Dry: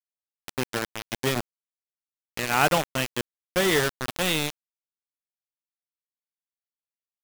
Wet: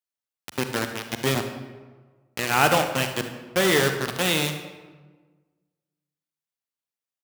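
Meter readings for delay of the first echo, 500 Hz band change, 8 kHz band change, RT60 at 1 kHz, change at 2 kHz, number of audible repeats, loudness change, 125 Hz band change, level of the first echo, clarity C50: 74 ms, +2.5 dB, +2.0 dB, 1.3 s, +2.5 dB, 1, +2.5 dB, +3.5 dB, -15.0 dB, 7.0 dB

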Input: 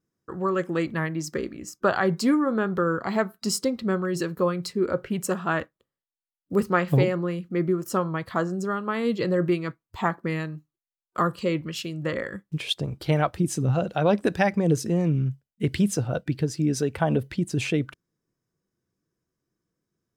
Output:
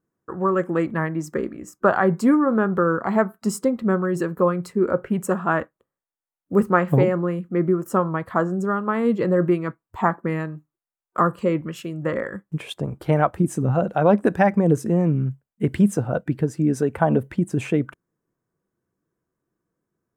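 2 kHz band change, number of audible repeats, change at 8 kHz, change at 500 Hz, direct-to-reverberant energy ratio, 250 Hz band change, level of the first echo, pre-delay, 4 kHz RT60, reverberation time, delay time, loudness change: +2.0 dB, none, -4.0 dB, +4.5 dB, none, +4.5 dB, none, none, none, none, none, +4.0 dB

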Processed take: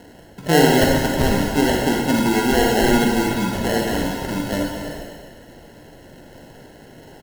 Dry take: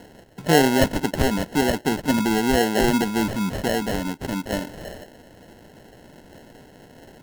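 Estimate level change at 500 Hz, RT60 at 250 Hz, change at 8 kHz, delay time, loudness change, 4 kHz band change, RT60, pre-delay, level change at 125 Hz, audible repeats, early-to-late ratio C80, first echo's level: +3.5 dB, 1.2 s, +3.5 dB, 0.242 s, +3.5 dB, +3.5 dB, 1.2 s, 38 ms, +4.0 dB, 1, 2.0 dB, -10.5 dB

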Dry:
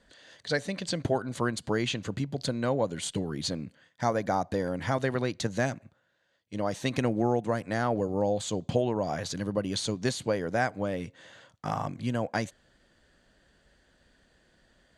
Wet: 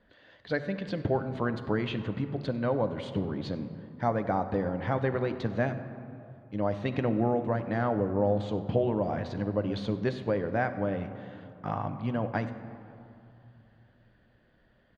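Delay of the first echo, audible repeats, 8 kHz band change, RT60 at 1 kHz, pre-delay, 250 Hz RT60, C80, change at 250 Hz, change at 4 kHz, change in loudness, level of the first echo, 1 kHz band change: 97 ms, 1, under -20 dB, 2.7 s, 10 ms, 3.3 s, 11.0 dB, +0.5 dB, -9.5 dB, -0.5 dB, -20.5 dB, -1.0 dB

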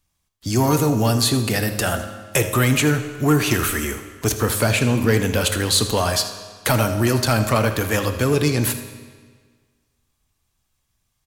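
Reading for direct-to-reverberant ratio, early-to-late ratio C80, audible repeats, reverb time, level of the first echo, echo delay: 7.0 dB, 9.5 dB, 1, 1.6 s, -15.0 dB, 80 ms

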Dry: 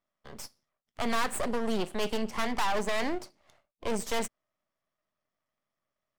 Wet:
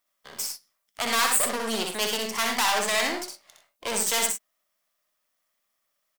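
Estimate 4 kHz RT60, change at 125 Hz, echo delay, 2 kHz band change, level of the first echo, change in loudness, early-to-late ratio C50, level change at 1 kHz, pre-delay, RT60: none, -4.0 dB, 62 ms, +8.0 dB, -4.0 dB, +7.0 dB, none, +5.0 dB, none, none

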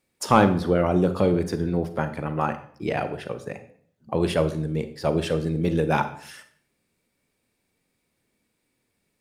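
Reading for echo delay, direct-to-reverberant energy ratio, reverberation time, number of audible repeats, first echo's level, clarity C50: none, 9.5 dB, 0.55 s, none, none, 11.5 dB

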